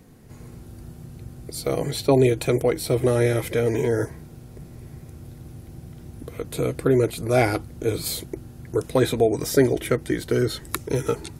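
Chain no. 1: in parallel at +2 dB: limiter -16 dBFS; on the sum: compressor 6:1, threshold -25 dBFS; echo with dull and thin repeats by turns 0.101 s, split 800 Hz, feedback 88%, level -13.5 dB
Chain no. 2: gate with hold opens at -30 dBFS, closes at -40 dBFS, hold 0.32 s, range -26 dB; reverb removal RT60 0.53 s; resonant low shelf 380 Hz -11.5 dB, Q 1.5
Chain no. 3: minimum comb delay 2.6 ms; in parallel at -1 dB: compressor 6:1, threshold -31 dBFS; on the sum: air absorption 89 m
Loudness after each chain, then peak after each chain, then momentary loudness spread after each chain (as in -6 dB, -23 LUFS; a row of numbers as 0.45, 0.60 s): -29.5, -26.0, -24.0 LUFS; -6.0, -5.0, -5.5 dBFS; 8, 10, 18 LU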